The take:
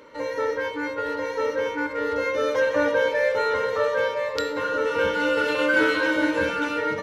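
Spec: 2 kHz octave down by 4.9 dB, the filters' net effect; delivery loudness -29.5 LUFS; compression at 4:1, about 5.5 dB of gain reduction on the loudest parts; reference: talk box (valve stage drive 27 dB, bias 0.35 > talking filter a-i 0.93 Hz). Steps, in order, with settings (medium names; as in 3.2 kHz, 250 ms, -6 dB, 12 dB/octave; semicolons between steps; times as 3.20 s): peaking EQ 2 kHz -7.5 dB; compression 4:1, threshold -25 dBFS; valve stage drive 27 dB, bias 0.35; talking filter a-i 0.93 Hz; trim +13 dB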